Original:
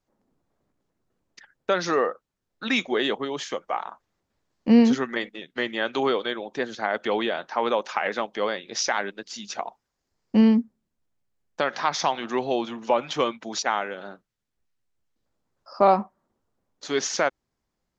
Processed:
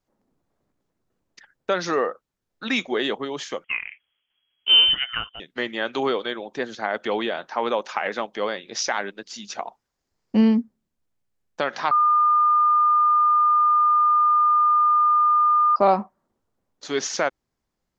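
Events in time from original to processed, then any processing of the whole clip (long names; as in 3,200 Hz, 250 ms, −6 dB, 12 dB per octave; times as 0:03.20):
0:03.64–0:05.40: voice inversion scrambler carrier 3,300 Hz
0:11.91–0:15.76: beep over 1,210 Hz −14.5 dBFS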